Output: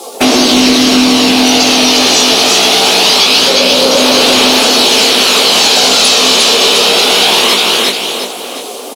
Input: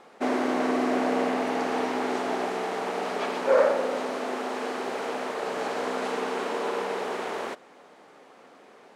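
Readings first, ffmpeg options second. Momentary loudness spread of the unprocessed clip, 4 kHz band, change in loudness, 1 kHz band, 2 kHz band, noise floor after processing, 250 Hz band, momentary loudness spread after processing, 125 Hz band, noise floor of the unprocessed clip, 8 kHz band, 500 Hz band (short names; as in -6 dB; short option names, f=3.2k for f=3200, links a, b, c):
8 LU, +36.5 dB, +22.0 dB, +15.5 dB, +21.5 dB, -24 dBFS, +19.0 dB, 5 LU, n/a, -53 dBFS, +35.0 dB, +14.0 dB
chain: -filter_complex "[0:a]afftdn=nr=23:nf=-46,highpass=150,acrossover=split=230[a][b];[b]acompressor=threshold=-35dB:ratio=6[c];[a][c]amix=inputs=2:normalize=0,aexciter=amount=14.6:drive=1.6:freq=2.8k,flanger=delay=16.5:depth=4:speed=2.3,aemphasis=mode=production:type=75fm,aecho=1:1:354|708|1062|1416|1770:0.668|0.254|0.0965|0.0367|0.0139,acompressor=threshold=-36dB:ratio=2.5,equalizer=f=11k:w=2.7:g=5,aphaser=in_gain=1:out_gain=1:delay=1.7:decay=0.23:speed=0.23:type=sinusoidal,apsyclip=31.5dB,volume=-1.5dB"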